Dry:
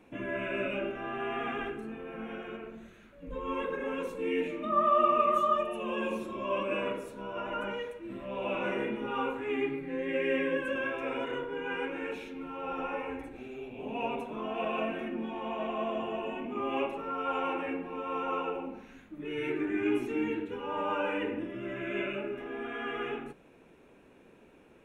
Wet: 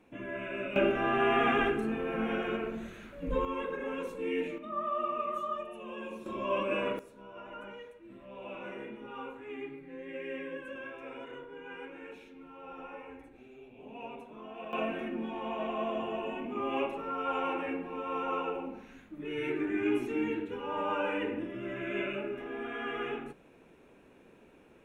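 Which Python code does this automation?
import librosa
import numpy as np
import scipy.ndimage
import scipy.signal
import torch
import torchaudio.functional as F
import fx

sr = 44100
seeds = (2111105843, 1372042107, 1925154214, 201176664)

y = fx.gain(x, sr, db=fx.steps((0.0, -4.0), (0.76, 8.0), (3.45, -2.0), (4.58, -8.5), (6.26, 0.5), (6.99, -10.0), (14.73, -0.5)))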